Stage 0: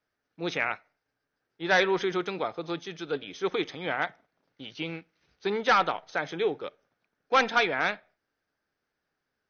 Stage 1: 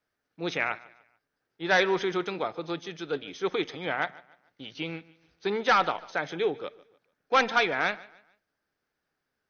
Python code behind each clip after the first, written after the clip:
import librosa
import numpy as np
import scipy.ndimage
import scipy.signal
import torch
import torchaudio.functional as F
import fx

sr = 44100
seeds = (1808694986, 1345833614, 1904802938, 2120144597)

y = fx.echo_feedback(x, sr, ms=147, feedback_pct=36, wet_db=-21)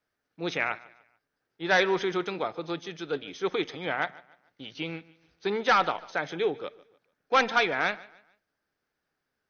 y = x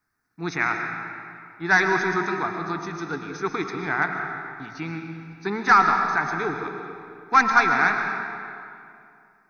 y = fx.fixed_phaser(x, sr, hz=1300.0, stages=4)
y = fx.rev_freeverb(y, sr, rt60_s=2.5, hf_ratio=0.7, predelay_ms=75, drr_db=4.0)
y = y * librosa.db_to_amplitude(8.0)